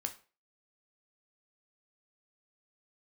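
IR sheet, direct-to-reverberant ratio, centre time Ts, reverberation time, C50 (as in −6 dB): 5.5 dB, 8 ms, 0.35 s, 13.5 dB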